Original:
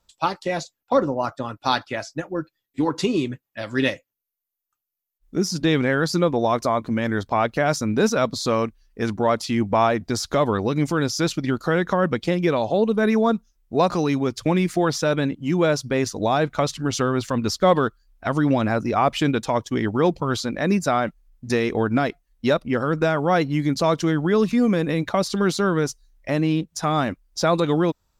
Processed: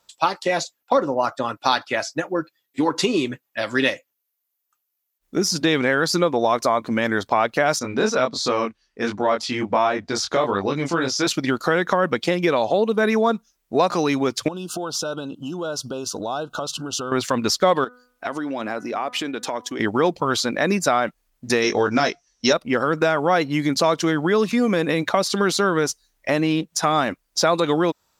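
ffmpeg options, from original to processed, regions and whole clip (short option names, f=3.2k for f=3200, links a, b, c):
-filter_complex "[0:a]asettb=1/sr,asplit=3[a][b][c];[a]atrim=end=7.794[d];[b]atrim=start=7.79:end=11.27,asetpts=PTS-STARTPTS,afade=t=in:d=0.004:c=qsin,afade=t=out:st=3.476:d=0.004:c=qsin,lowpass=6.7k,flanger=delay=20:depth=3.8:speed=1.4[e];[c]atrim=start=11.266[f];[d][e]acrossfade=d=0.004:c1=hsin:c2=qsin[g];[g][f]acrossfade=d=0.004:c1=qsin:c2=hsin,asettb=1/sr,asplit=3[h][i][j];[h]atrim=end=14.484[k];[i]atrim=start=14.48:end=17.12,asetpts=PTS-STARTPTS,afade=t=in:d=0.004:c=qsin,afade=t=out:st=2.636:d=0.004:c=qsin,acompressor=threshold=-28dB:ratio=12:attack=3.2:release=140:knee=1:detection=peak,asuperstop=centerf=2000:order=20:qfactor=1.9[l];[j]atrim=start=17.116[m];[k][l]acrossfade=d=0.004:c1=hsin:c2=qsin[n];[n][m]acrossfade=d=0.004:c1=qsin:c2=hsin,asettb=1/sr,asplit=3[o][p][q];[o]atrim=end=17.844[r];[p]atrim=start=17.84:end=19.8,asetpts=PTS-STARTPTS,afade=t=in:d=0.004:c=qsin,afade=t=out:st=1.956:d=0.004:c=qsin,lowshelf=f=190:t=q:w=1.5:g=-7,acompressor=threshold=-30dB:ratio=4:attack=3.2:release=140:knee=1:detection=peak,bandreject=f=247.7:t=h:w=4,bandreject=f=495.4:t=h:w=4,bandreject=f=743.1:t=h:w=4,bandreject=f=990.8:t=h:w=4,bandreject=f=1.2385k:t=h:w=4,bandreject=f=1.4862k:t=h:w=4,bandreject=f=1.7339k:t=h:w=4,bandreject=f=1.9816k:t=h:w=4[s];[q]atrim=start=19.796[t];[r][s]acrossfade=d=0.004:c1=hsin:c2=qsin[u];[u][t]acrossfade=d=0.004:c1=qsin:c2=hsin,asettb=1/sr,asplit=3[v][w][x];[v]atrim=end=21.624[y];[w]atrim=start=21.62:end=22.53,asetpts=PTS-STARTPTS,afade=t=in:d=0.004:c=qsin,afade=t=out:st=0.906:d=0.004:c=qsin,lowpass=f=5.8k:t=q:w=11,asplit=2[z][aa];[aa]adelay=20,volume=-6dB[ab];[z][ab]amix=inputs=2:normalize=0,atrim=end_sample=40131[ac];[x]atrim=start=22.526[ad];[y][ac]acrossfade=d=0.004:c1=hsin:c2=qsin[ae];[ae][ad]acrossfade=d=0.004:c1=qsin:c2=hsin,highpass=f=430:p=1,acompressor=threshold=-26dB:ratio=2,volume=8dB"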